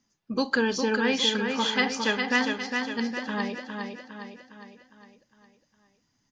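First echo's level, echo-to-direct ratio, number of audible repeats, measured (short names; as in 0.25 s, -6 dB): -5.0 dB, -4.0 dB, 5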